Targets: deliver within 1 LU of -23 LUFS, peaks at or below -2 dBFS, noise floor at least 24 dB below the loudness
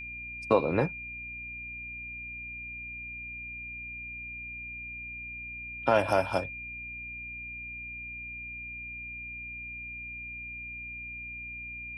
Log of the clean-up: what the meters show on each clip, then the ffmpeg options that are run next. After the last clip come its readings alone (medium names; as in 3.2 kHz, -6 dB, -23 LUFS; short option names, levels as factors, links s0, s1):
hum 60 Hz; highest harmonic 300 Hz; hum level -48 dBFS; steady tone 2.4 kHz; tone level -38 dBFS; loudness -34.5 LUFS; peak level -9.0 dBFS; loudness target -23.0 LUFS
-> -af "bandreject=f=60:t=h:w=6,bandreject=f=120:t=h:w=6,bandreject=f=180:t=h:w=6,bandreject=f=240:t=h:w=6,bandreject=f=300:t=h:w=6"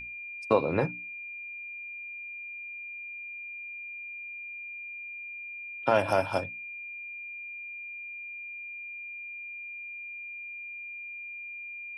hum not found; steady tone 2.4 kHz; tone level -38 dBFS
-> -af "bandreject=f=2400:w=30"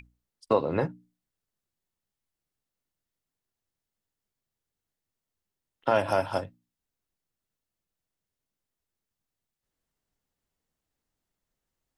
steady tone not found; loudness -28.0 LUFS; peak level -9.5 dBFS; loudness target -23.0 LUFS
-> -af "volume=1.78"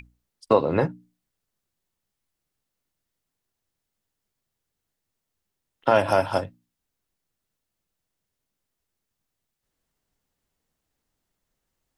loudness -23.0 LUFS; peak level -4.5 dBFS; noise floor -83 dBFS